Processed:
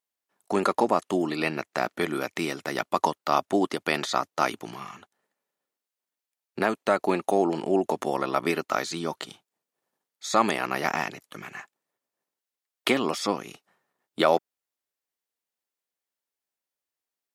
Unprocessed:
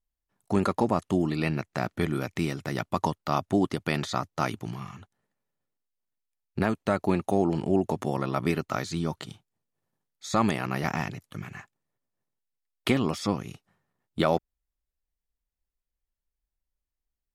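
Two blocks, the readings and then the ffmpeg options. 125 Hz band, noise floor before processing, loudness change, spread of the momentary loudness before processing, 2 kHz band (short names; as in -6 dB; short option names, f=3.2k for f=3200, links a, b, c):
-9.5 dB, under -85 dBFS, +1.5 dB, 14 LU, +4.5 dB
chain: -af "highpass=350,volume=4.5dB"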